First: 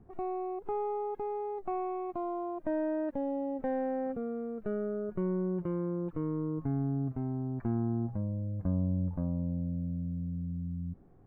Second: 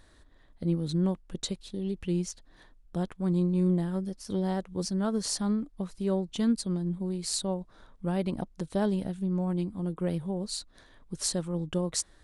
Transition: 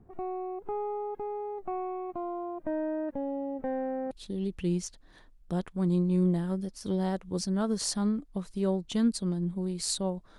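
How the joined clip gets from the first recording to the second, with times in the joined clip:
first
4.11 switch to second from 1.55 s

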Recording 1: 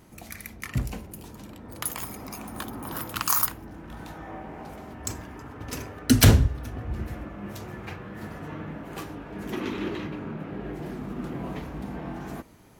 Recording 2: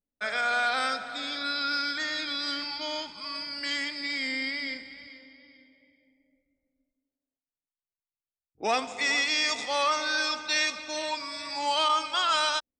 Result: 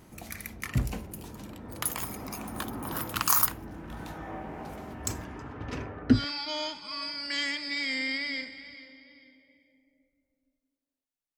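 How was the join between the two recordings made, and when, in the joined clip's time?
recording 1
5.24–6.25 LPF 9000 Hz -> 1100 Hz
6.17 switch to recording 2 from 2.5 s, crossfade 0.16 s

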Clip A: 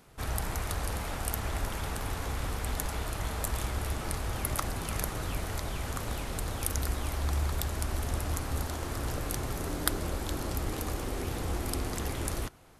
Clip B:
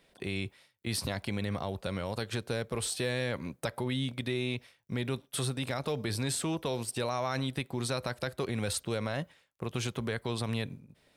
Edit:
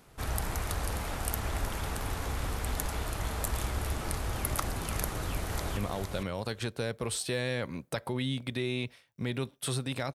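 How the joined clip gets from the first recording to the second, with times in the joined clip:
clip A
5.04–5.77 echo throw 0.46 s, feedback 10%, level -5.5 dB
5.77 switch to clip B from 1.48 s

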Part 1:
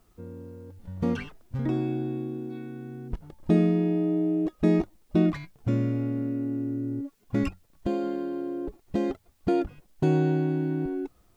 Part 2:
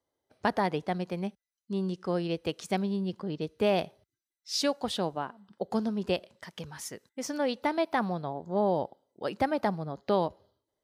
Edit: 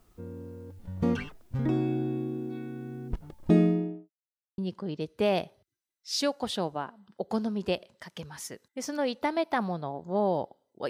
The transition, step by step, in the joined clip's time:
part 1
3.55–4.1 studio fade out
4.1–4.58 mute
4.58 switch to part 2 from 2.99 s

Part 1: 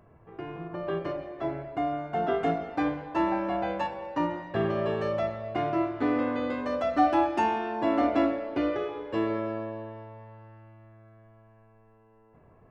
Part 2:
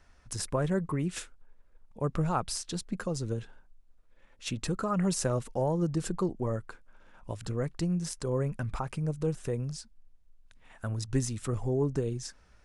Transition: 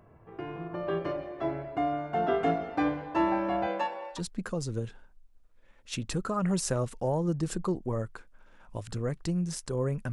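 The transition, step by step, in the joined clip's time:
part 1
3.66–4.21 HPF 200 Hz -> 800 Hz
4.15 switch to part 2 from 2.69 s, crossfade 0.12 s

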